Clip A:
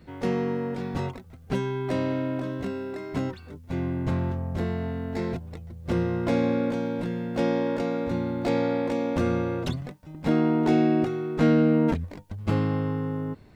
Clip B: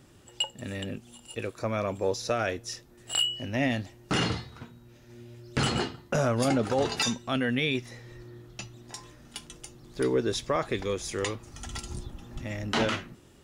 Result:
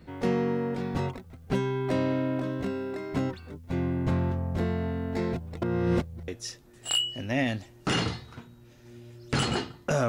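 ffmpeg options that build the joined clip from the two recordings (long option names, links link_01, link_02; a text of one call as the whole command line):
ffmpeg -i cue0.wav -i cue1.wav -filter_complex "[0:a]apad=whole_dur=10.08,atrim=end=10.08,asplit=2[link_01][link_02];[link_01]atrim=end=5.622[link_03];[link_02]atrim=start=5.618:end=6.282,asetpts=PTS-STARTPTS,areverse[link_04];[1:a]atrim=start=2.518:end=6.32[link_05];[link_03][link_04]acrossfade=duration=0.004:curve1=hsin:curve2=hsin[link_06];[link_06][link_05]acrossfade=duration=0.004:curve1=hsin:curve2=hsin" out.wav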